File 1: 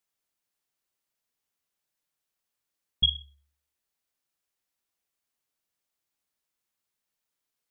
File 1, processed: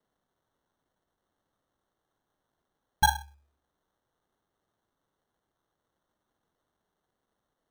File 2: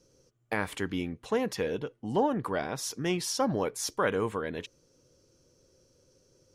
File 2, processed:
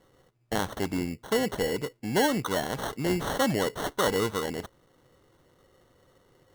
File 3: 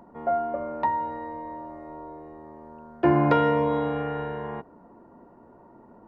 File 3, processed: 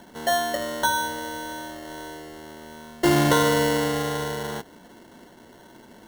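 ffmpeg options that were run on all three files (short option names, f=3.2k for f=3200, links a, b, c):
-af "acrusher=samples=18:mix=1:aa=0.000001,aeval=exprs='0.355*(cos(1*acos(clip(val(0)/0.355,-1,1)))-cos(1*PI/2))+0.0282*(cos(5*acos(clip(val(0)/0.355,-1,1)))-cos(5*PI/2))':c=same"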